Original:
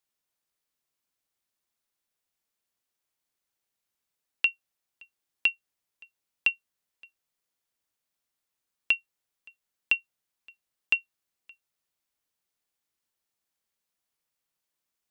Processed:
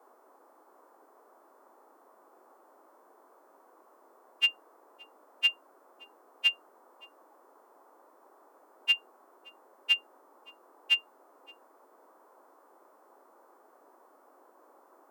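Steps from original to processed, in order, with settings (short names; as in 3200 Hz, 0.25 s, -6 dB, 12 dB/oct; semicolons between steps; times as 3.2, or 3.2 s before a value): frequency quantiser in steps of 2 st; band noise 300–1200 Hz -57 dBFS; gain -3.5 dB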